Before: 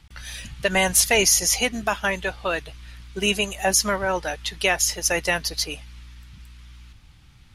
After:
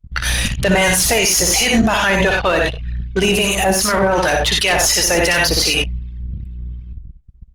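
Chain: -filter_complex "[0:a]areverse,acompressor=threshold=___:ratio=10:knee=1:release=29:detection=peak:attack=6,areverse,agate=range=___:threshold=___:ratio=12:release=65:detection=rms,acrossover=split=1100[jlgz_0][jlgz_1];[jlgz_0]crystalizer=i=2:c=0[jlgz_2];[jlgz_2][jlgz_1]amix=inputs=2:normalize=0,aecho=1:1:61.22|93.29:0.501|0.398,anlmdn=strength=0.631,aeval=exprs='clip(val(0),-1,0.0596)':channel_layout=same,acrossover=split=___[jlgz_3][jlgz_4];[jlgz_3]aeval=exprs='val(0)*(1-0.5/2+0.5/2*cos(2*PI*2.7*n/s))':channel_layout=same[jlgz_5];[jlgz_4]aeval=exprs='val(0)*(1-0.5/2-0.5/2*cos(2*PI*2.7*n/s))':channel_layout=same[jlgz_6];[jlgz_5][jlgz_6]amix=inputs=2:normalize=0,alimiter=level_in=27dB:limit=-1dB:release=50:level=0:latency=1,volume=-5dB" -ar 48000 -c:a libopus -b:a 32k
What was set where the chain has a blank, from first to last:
-27dB, -23dB, -47dB, 1100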